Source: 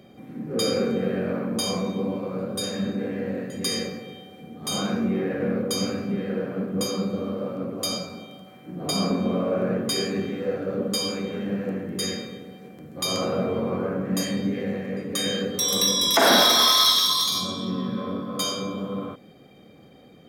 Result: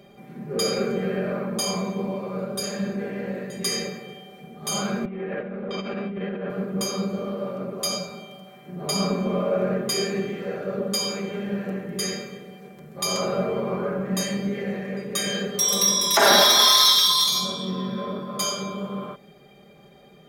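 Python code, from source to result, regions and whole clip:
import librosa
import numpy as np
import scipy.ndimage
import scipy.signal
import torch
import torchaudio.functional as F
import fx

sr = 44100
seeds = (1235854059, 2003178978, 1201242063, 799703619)

y = fx.chain(x, sr, fx.cheby1_bandpass(low_hz=170.0, high_hz=3300.0, order=3),
    fx.over_compress(threshold_db=-30.0, ratio=-1.0), at=(5.05, 6.5))
y = fx.peak_eq(y, sr, hz=240.0, db=-8.5, octaves=0.7)
y = y + 0.79 * np.pad(y, (int(5.0 * sr / 1000.0), 0))[:len(y)]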